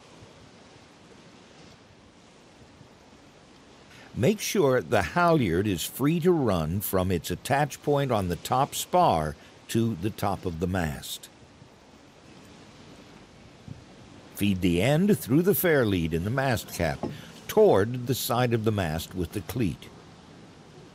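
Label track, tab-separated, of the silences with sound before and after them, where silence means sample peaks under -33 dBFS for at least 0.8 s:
11.250000	13.680000	silence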